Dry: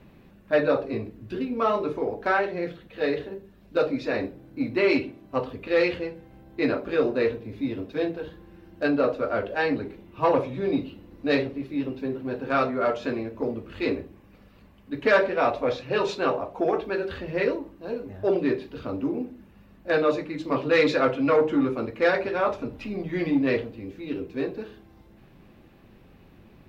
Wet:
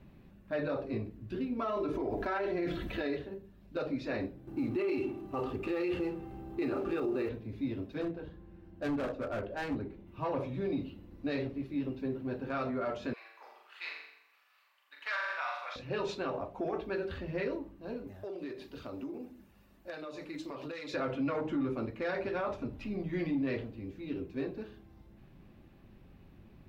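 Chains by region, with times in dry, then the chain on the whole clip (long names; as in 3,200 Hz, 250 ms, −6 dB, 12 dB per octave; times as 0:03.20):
0:01.59–0:03.17: comb filter 3 ms, depth 48% + envelope flattener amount 50%
0:04.47–0:07.29: mu-law and A-law mismatch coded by mu + hollow resonant body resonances 370/810/1,200/2,700 Hz, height 13 dB
0:08.01–0:10.07: high-shelf EQ 2,200 Hz −8 dB + hard clipping −24 dBFS
0:13.13–0:15.76: high-pass filter 990 Hz 24 dB per octave + flutter between parallel walls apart 7.2 metres, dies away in 0.76 s
0:18.07–0:20.94: phase shifter 1.5 Hz, delay 3.5 ms, feedback 21% + bass and treble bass −9 dB, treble +8 dB + downward compressor 12 to 1, threshold −30 dBFS
whole clip: low-shelf EQ 210 Hz +7 dB; notch filter 470 Hz, Q 12; brickwall limiter −18 dBFS; level −8 dB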